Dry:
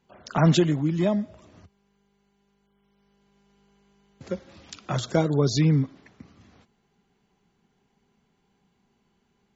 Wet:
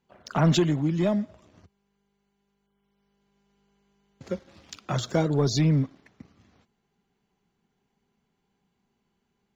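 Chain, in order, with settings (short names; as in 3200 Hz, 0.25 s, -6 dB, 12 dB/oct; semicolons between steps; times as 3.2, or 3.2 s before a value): sample leveller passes 1; gain -4 dB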